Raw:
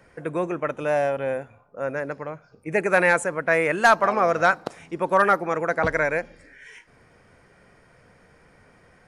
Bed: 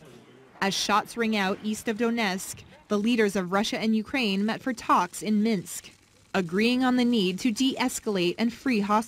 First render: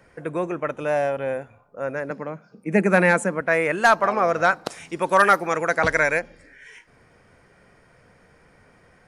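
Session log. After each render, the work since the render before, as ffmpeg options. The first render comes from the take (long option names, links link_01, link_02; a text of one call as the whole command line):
ffmpeg -i in.wav -filter_complex "[0:a]asettb=1/sr,asplit=3[link_01][link_02][link_03];[link_01]atrim=end=2.104[link_04];[link_02]atrim=start=2.1:end=3.41,asetpts=PTS-STARTPTS,afade=type=in:duration=0.004:curve=qsin,afade=type=out:start_time=1.306:duration=0.004:curve=qsin,highpass=frequency=200:width_type=q:width=4.9[link_05];[link_03]atrim=start=3.406[link_06];[link_04][link_05]acrossfade=duration=0.004:curve1=hsin:curve2=qsin[link_07];[link_07][link_06]acrossfade=duration=0.004:curve1=qsin:curve2=hsin,asplit=3[link_08][link_09][link_10];[link_08]afade=type=out:start_time=4.64:duration=0.02[link_11];[link_09]highshelf=frequency=2200:gain=11.5,afade=type=in:start_time=4.64:duration=0.02,afade=type=out:start_time=6.18:duration=0.02[link_12];[link_10]afade=type=in:start_time=6.18:duration=0.02[link_13];[link_11][link_12][link_13]amix=inputs=3:normalize=0" out.wav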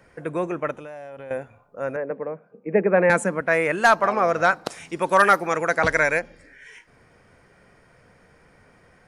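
ffmpeg -i in.wav -filter_complex "[0:a]asettb=1/sr,asplit=3[link_01][link_02][link_03];[link_01]atrim=end=0.714[link_04];[link_02]atrim=start=0.71:end=1.31,asetpts=PTS-STARTPTS,afade=type=in:duration=0.004:curve=qsin,afade=type=out:start_time=0.596:duration=0.004:curve=qsin,acompressor=threshold=-35dB:ratio=8:attack=3.2:release=140:knee=1:detection=peak[link_05];[link_03]atrim=start=1.306[link_06];[link_04][link_05]acrossfade=duration=0.004:curve1=hsin:curve2=qsin[link_07];[link_07][link_06]acrossfade=duration=0.004:curve1=qsin:curve2=hsin,asettb=1/sr,asplit=3[link_08][link_09][link_10];[link_08]atrim=end=1.964[link_11];[link_09]atrim=start=1.96:end=3.1,asetpts=PTS-STARTPTS,afade=type=in:duration=0.004:curve=qsin,afade=type=out:start_time=1.136:duration=0.004:curve=qsin,highpass=190,equalizer=frequency=210:width_type=q:width=4:gain=-4,equalizer=frequency=310:width_type=q:width=4:gain=-3,equalizer=frequency=470:width_type=q:width=4:gain=7,equalizer=frequency=910:width_type=q:width=4:gain=-3,equalizer=frequency=1400:width_type=q:width=4:gain=-8,equalizer=frequency=2000:width_type=q:width=4:gain=-3,lowpass=frequency=2100:width=0.5412,lowpass=frequency=2100:width=1.3066[link_12];[link_10]atrim=start=3.096[link_13];[link_11][link_12]acrossfade=duration=0.004:curve1=hsin:curve2=qsin[link_14];[link_14][link_13]acrossfade=duration=0.004:curve1=qsin:curve2=hsin" out.wav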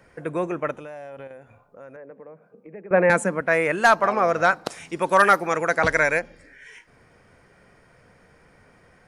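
ffmpeg -i in.wav -filter_complex "[0:a]asettb=1/sr,asplit=3[link_01][link_02][link_03];[link_01]atrim=end=1.274[link_04];[link_02]atrim=start=1.27:end=2.91,asetpts=PTS-STARTPTS,afade=type=in:duration=0.004:curve=qsin,afade=type=out:start_time=1.636:duration=0.004:curve=qsin,acompressor=threshold=-44dB:ratio=3:attack=3.2:release=140:knee=1:detection=peak[link_05];[link_03]atrim=start=2.906[link_06];[link_04][link_05]acrossfade=duration=0.004:curve1=hsin:curve2=qsin[link_07];[link_07][link_06]acrossfade=duration=0.004:curve1=qsin:curve2=hsin" out.wav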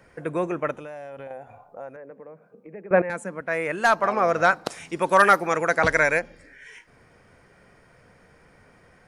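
ffmpeg -i in.wav -filter_complex "[0:a]asettb=1/sr,asplit=3[link_01][link_02][link_03];[link_01]atrim=end=1.274[link_04];[link_02]atrim=start=1.27:end=1.89,asetpts=PTS-STARTPTS,afade=type=in:duration=0.004:curve=qsin,afade=type=out:start_time=0.616:duration=0.004:curve=qsin,equalizer=frequency=760:width_type=o:width=0.6:gain=15[link_05];[link_03]atrim=start=1.886[link_06];[link_04][link_05]acrossfade=duration=0.004:curve1=hsin:curve2=qsin[link_07];[link_07][link_06]acrossfade=duration=0.004:curve1=qsin:curve2=hsin,asplit=2[link_08][link_09];[link_08]atrim=end=3.02,asetpts=PTS-STARTPTS,afade=type=out:start_time=3.016:duration=0.004:curve=hsin:silence=0.188365[link_10];[link_09]atrim=start=3.02,asetpts=PTS-STARTPTS,afade=type=in:duration=1.37:silence=0.188365[link_11];[link_10][link_11]concat=n=2:v=0:a=1" out.wav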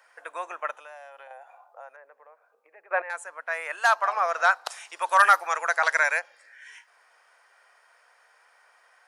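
ffmpeg -i in.wav -af "highpass=frequency=760:width=0.5412,highpass=frequency=760:width=1.3066,equalizer=frequency=2200:width_type=o:width=0.27:gain=-5" out.wav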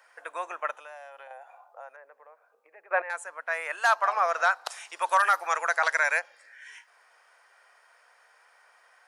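ffmpeg -i in.wav -af "alimiter=limit=-12dB:level=0:latency=1:release=127" out.wav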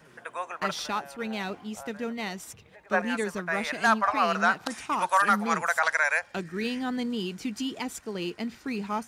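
ffmpeg -i in.wav -i bed.wav -filter_complex "[1:a]volume=-7.5dB[link_01];[0:a][link_01]amix=inputs=2:normalize=0" out.wav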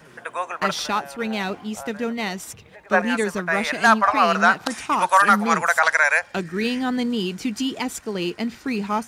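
ffmpeg -i in.wav -af "volume=7dB" out.wav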